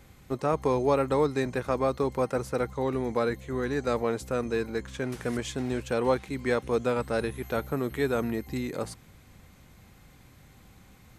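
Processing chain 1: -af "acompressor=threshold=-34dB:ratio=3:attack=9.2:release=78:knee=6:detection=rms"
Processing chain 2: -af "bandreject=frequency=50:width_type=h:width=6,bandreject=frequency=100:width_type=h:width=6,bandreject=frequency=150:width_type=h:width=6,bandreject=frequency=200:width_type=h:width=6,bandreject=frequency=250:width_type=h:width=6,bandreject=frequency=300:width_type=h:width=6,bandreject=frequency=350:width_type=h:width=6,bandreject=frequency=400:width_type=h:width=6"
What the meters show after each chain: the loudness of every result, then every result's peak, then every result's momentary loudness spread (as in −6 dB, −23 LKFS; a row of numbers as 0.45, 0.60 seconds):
−36.5, −29.5 LKFS; −20.5, −11.5 dBFS; 20, 8 LU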